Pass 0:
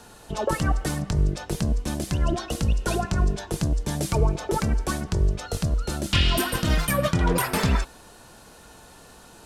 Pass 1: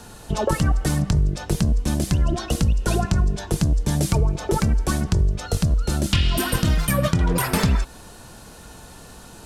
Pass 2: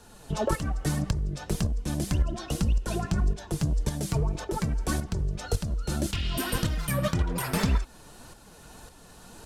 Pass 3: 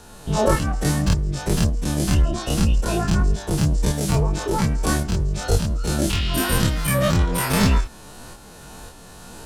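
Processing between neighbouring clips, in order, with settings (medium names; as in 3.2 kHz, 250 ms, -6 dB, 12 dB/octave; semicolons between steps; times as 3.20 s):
tone controls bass +6 dB, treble +2 dB; compression, threshold -19 dBFS, peak gain reduction 9 dB; trim +3.5 dB
hard clipper -12 dBFS, distortion -24 dB; tremolo saw up 1.8 Hz, depth 55%; flange 1.8 Hz, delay 1.7 ms, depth 5.9 ms, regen +48%
every event in the spectrogram widened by 60 ms; trim +4 dB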